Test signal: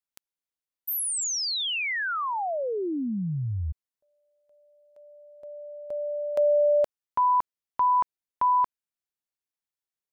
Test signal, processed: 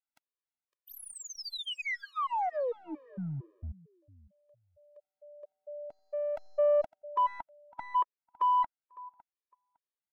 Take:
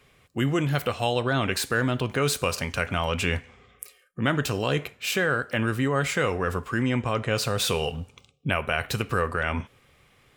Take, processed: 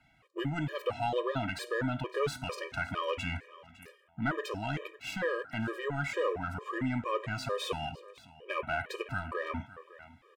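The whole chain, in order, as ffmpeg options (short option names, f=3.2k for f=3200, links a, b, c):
-filter_complex "[0:a]aecho=1:1:557|1114:0.0891|0.0152,asplit=2[a][b];[b]aeval=exprs='clip(val(0),-1,0.0282)':c=same,volume=-5dB[c];[a][c]amix=inputs=2:normalize=0,asplit=2[d][e];[e]highpass=f=720:p=1,volume=10dB,asoftclip=type=tanh:threshold=-8dB[f];[d][f]amix=inputs=2:normalize=0,lowpass=f=1.2k:p=1,volume=-6dB,afftfilt=real='re*gt(sin(2*PI*2.2*pts/sr)*(1-2*mod(floor(b*sr/1024/320),2)),0)':imag='im*gt(sin(2*PI*2.2*pts/sr)*(1-2*mod(floor(b*sr/1024/320),2)),0)':win_size=1024:overlap=0.75,volume=-6.5dB"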